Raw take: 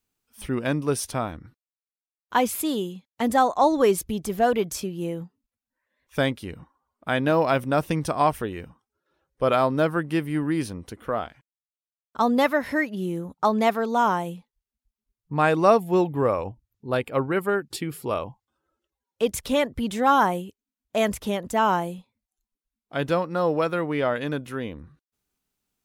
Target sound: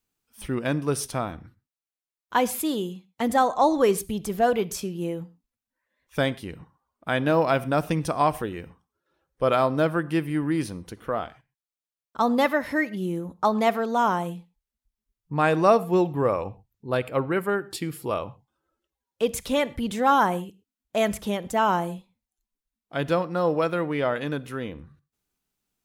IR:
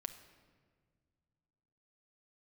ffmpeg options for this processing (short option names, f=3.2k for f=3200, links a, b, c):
-filter_complex "[0:a]asplit=2[a][b];[1:a]atrim=start_sample=2205,atrim=end_sample=6174[c];[b][c]afir=irnorm=-1:irlink=0,volume=1.5dB[d];[a][d]amix=inputs=2:normalize=0,volume=-6dB"